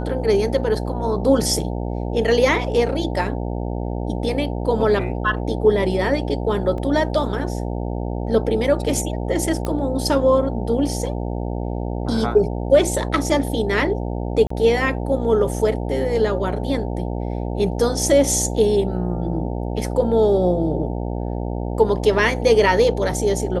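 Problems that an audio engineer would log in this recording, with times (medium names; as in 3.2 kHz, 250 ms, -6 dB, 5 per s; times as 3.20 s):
buzz 60 Hz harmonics 15 -25 dBFS
6.78 s: dropout 2.1 ms
9.65 s: pop -12 dBFS
14.47–14.50 s: dropout 34 ms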